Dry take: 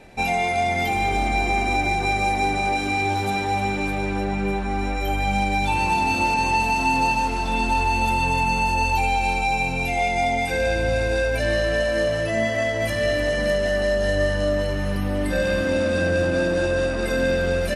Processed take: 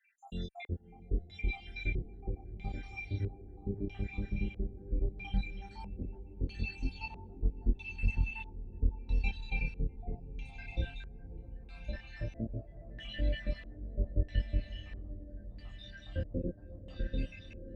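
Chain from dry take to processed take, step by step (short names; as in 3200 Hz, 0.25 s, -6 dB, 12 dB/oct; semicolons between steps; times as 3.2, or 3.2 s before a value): random spectral dropouts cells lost 81%; passive tone stack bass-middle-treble 10-0-1; diffused feedback echo 0.602 s, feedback 76%, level -12.5 dB; chorus 0.14 Hz, depth 7.6 ms; LFO low-pass square 0.77 Hz 440–3200 Hz; gain +10 dB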